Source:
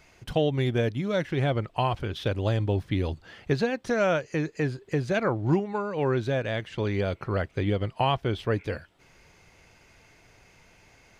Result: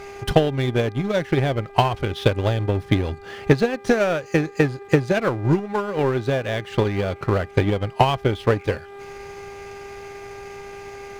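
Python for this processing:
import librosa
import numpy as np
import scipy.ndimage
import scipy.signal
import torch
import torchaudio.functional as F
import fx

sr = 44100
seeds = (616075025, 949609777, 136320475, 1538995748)

y = fx.power_curve(x, sr, exponent=0.7)
y = fx.dmg_buzz(y, sr, base_hz=400.0, harmonics=6, level_db=-37.0, tilt_db=-7, odd_only=False)
y = fx.transient(y, sr, attack_db=11, sustain_db=-5)
y = y * 10.0 ** (-1.0 / 20.0)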